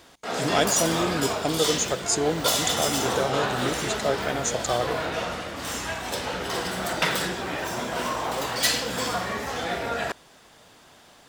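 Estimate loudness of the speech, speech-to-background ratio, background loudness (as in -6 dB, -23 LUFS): -27.5 LUFS, -0.5 dB, -27.0 LUFS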